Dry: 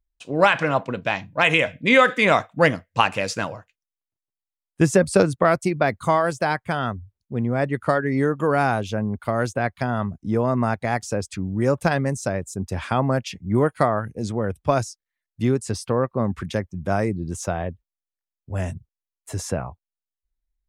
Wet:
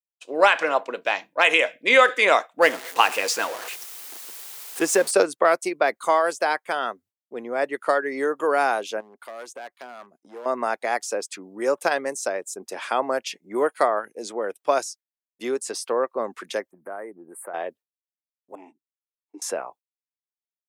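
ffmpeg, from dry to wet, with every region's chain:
-filter_complex "[0:a]asettb=1/sr,asplit=3[s0][s1][s2];[s0]atrim=end=2.624[s3];[s1]atrim=start=2.62:end=5.11,asetpts=PTS-STARTPTS,afade=t=in:d=0.004:c=qsin,afade=t=out:st=2.486:d=0.004:c=qsin,aeval=exprs='val(0)+0.5*0.0376*sgn(val(0))':c=same,bandreject=f=590:w=9.1[s4];[s2]atrim=start=5.106[s5];[s3][s4]acrossfade=d=0.004:c1=hsin:c2=qsin[s6];[s6][s5]acrossfade=d=0.004:c1=qsin:c2=hsin,asettb=1/sr,asplit=3[s7][s8][s9];[s7]atrim=end=9.004[s10];[s8]atrim=start=9:end=10.46,asetpts=PTS-STARTPTS,afade=t=in:d=0.004:c=qsin,afade=t=out:st=1.456:d=0.004:c=qsin,volume=8.41,asoftclip=hard,volume=0.119,acompressor=threshold=0.0178:ratio=4:attack=3.2:release=140:knee=1:detection=peak[s11];[s9]atrim=start=10.456[s12];[s10][s11]acrossfade=d=0.004:c1=hsin:c2=qsin[s13];[s13][s12]acrossfade=d=0.004:c1=qsin:c2=hsin,asettb=1/sr,asplit=3[s14][s15][s16];[s14]atrim=end=16.714[s17];[s15]atrim=start=16.71:end=17.54,asetpts=PTS-STARTPTS,afade=t=in:d=0.004:c=qsin,afade=t=out:st=0.826:d=0.004:c=qsin,asuperstop=centerf=4500:order=12:qfactor=0.65,acompressor=threshold=0.0251:ratio=2.5:attack=3.2:release=140:knee=1:detection=peak[s18];[s16]atrim=start=17.536[s19];[s17][s18]acrossfade=d=0.004:c1=hsin:c2=qsin[s20];[s20][s19]acrossfade=d=0.004:c1=qsin:c2=hsin,asettb=1/sr,asplit=3[s21][s22][s23];[s21]atrim=end=18.554[s24];[s22]atrim=start=18.55:end=19.42,asetpts=PTS-STARTPTS,afade=t=in:d=0.004:c=qsin,afade=t=out:st=0.866:d=0.004:c=qsin,asplit=3[s25][s26][s27];[s25]bandpass=f=300:t=q:w=8,volume=1[s28];[s26]bandpass=f=870:t=q:w=8,volume=0.501[s29];[s27]bandpass=f=2240:t=q:w=8,volume=0.355[s30];[s28][s29][s30]amix=inputs=3:normalize=0,tiltshelf=f=1200:g=5[s31];[s23]atrim=start=19.416[s32];[s24][s31]acrossfade=d=0.004:c1=hsin:c2=qsin[s33];[s33][s32]acrossfade=d=0.004:c1=qsin:c2=hsin,agate=range=0.0224:threshold=0.0112:ratio=3:detection=peak,highpass=f=360:w=0.5412,highpass=f=360:w=1.3066,highshelf=f=6400:g=5"

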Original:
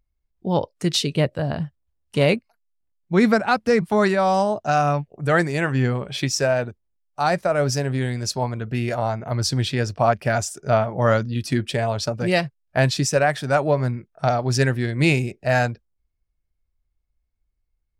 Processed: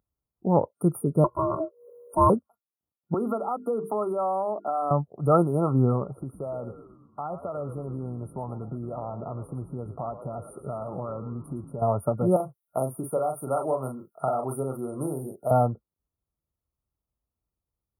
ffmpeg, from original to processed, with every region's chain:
-filter_complex "[0:a]asettb=1/sr,asplit=3[s0][s1][s2];[s0]atrim=end=1.244[s3];[s1]atrim=start=1.24:end=2.3,asetpts=PTS-STARTPTS,afade=t=in:d=0.004:c=qsin,afade=t=out:st=1.056:d=0.004:c=qsin,aeval=exprs='val(0)*sin(2*PI*480*n/s)':c=same,aecho=1:1:2:0.83,atrim=end_sample=46746,acompressor=mode=upward:threshold=0.0251:ratio=2.5:attack=3.2:release=140:knee=2.83:detection=peak[s4];[s2]atrim=start=2.296[s5];[s3][s4]acrossfade=d=0.004:c1=hsin:c2=qsin[s6];[s6][s5]acrossfade=d=0.004:c1=qsin:c2=hsin,asettb=1/sr,asplit=3[s7][s8][s9];[s7]atrim=end=3.144[s10];[s8]atrim=start=3.14:end=4.91,asetpts=PTS-STARTPTS,afade=t=in:d=0.004:c=qsin,afade=t=out:st=1.766:d=0.004:c=qsin,highpass=f=250:w=0.5412,highpass=f=250:w=1.3066,bandreject=f=50:t=h:w=6,bandreject=f=100:t=h:w=6,bandreject=f=150:t=h:w=6,bandreject=f=200:t=h:w=6,bandreject=f=250:t=h:w=6,bandreject=f=300:t=h:w=6,bandreject=f=350:t=h:w=6,bandreject=f=400:t=h:w=6,bandreject=f=450:t=h:w=6,acompressor=threshold=0.0562:ratio=3:attack=3.2:release=140:knee=1:detection=peak[s11];[s9]atrim=start=4.906[s12];[s10][s11]acrossfade=d=0.004:c1=hsin:c2=qsin[s13];[s13][s12]acrossfade=d=0.004:c1=qsin:c2=hsin,asettb=1/sr,asplit=3[s14][s15][s16];[s14]atrim=end=6.054[s17];[s15]atrim=start=6.05:end=11.82,asetpts=PTS-STARTPTS,afade=t=in:d=0.004:c=qsin,afade=t=out:st=5.766:d=0.004:c=qsin,lowpass=6000,acompressor=threshold=0.0316:ratio=6:attack=3.2:release=140:knee=1:detection=peak,asplit=8[s18][s19][s20][s21][s22][s23][s24][s25];[s19]adelay=114,afreqshift=-84,volume=0.266[s26];[s20]adelay=228,afreqshift=-168,volume=0.155[s27];[s21]adelay=342,afreqshift=-252,volume=0.0891[s28];[s22]adelay=456,afreqshift=-336,volume=0.0519[s29];[s23]adelay=570,afreqshift=-420,volume=0.0302[s30];[s24]adelay=684,afreqshift=-504,volume=0.0174[s31];[s25]adelay=798,afreqshift=-588,volume=0.0101[s32];[s18][s26][s27][s28][s29][s30][s31][s32]amix=inputs=8:normalize=0,atrim=end_sample=254457[s33];[s16]atrim=start=11.816[s34];[s17][s33]acrossfade=d=0.004:c1=hsin:c2=qsin[s35];[s35][s34]acrossfade=d=0.004:c1=qsin:c2=hsin,asettb=1/sr,asplit=3[s36][s37][s38];[s36]atrim=end=12.364[s39];[s37]atrim=start=12.36:end=15.51,asetpts=PTS-STARTPTS,afade=t=in:d=0.004:c=qsin,afade=t=out:st=3.146:d=0.004:c=qsin,bass=f=250:g=-10,treble=f=4000:g=13,acrossover=split=560|3200[s40][s41][s42];[s40]acompressor=threshold=0.0282:ratio=4[s43];[s41]acompressor=threshold=0.0398:ratio=4[s44];[s42]acompressor=threshold=0.02:ratio=4[s45];[s43][s44][s45]amix=inputs=3:normalize=0,asplit=2[s46][s47];[s47]adelay=38,volume=0.531[s48];[s46][s48]amix=inputs=2:normalize=0,atrim=end_sample=138915[s49];[s38]atrim=start=15.506[s50];[s39][s49]acrossfade=d=0.004:c1=hsin:c2=qsin[s51];[s51][s50]acrossfade=d=0.004:c1=qsin:c2=hsin,afftfilt=real='re*(1-between(b*sr/4096,1400,9000))':imag='im*(1-between(b*sr/4096,1400,9000))':win_size=4096:overlap=0.75,highpass=100"

